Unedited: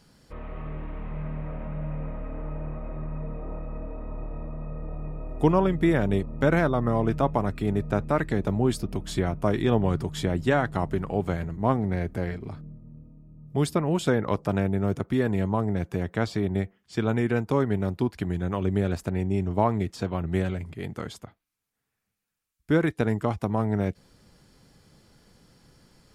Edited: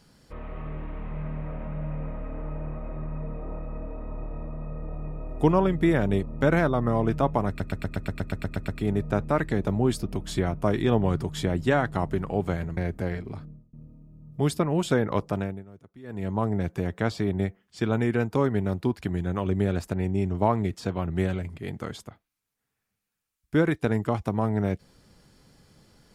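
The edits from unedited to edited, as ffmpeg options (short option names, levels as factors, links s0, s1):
-filter_complex "[0:a]asplit=15[s0][s1][s2][s3][s4][s5][s6][s7][s8][s9][s10][s11][s12][s13][s14];[s0]atrim=end=7.602[s15];[s1]atrim=start=7.478:end=7.602[s16];[s2]atrim=start=7.478:end=7.602[s17];[s3]atrim=start=7.478:end=7.602[s18];[s4]atrim=start=7.478:end=7.602[s19];[s5]atrim=start=7.478:end=7.602[s20];[s6]atrim=start=7.478:end=7.602[s21];[s7]atrim=start=7.478:end=7.602[s22];[s8]atrim=start=7.478:end=7.602[s23];[s9]atrim=start=7.478:end=7.602[s24];[s10]atrim=start=7.478:end=11.572[s25];[s11]atrim=start=11.928:end=12.89,asetpts=PTS-STARTPTS,afade=t=out:st=0.672:d=0.29[s26];[s12]atrim=start=12.89:end=14.81,asetpts=PTS-STARTPTS,afade=t=in:d=0.004:c=hsin,afade=t=out:st=1.52:d=0.4:silence=0.0749894[s27];[s13]atrim=start=14.81:end=15.19,asetpts=PTS-STARTPTS,volume=0.075[s28];[s14]atrim=start=15.19,asetpts=PTS-STARTPTS,afade=t=in:d=0.4:silence=0.0749894[s29];[s15][s16]acrossfade=d=0.004:c1=hsin:c2=hsin[s30];[s30][s17]acrossfade=d=0.004:c1=hsin:c2=hsin[s31];[s31][s18]acrossfade=d=0.004:c1=hsin:c2=hsin[s32];[s32][s19]acrossfade=d=0.004:c1=hsin:c2=hsin[s33];[s33][s20]acrossfade=d=0.004:c1=hsin:c2=hsin[s34];[s34][s21]acrossfade=d=0.004:c1=hsin:c2=hsin[s35];[s35][s22]acrossfade=d=0.004:c1=hsin:c2=hsin[s36];[s36][s23]acrossfade=d=0.004:c1=hsin:c2=hsin[s37];[s37][s24]acrossfade=d=0.004:c1=hsin:c2=hsin[s38];[s38][s25]acrossfade=d=0.004:c1=hsin:c2=hsin[s39];[s26][s27][s28][s29]concat=n=4:v=0:a=1[s40];[s39][s40]acrossfade=d=0.004:c1=hsin:c2=hsin"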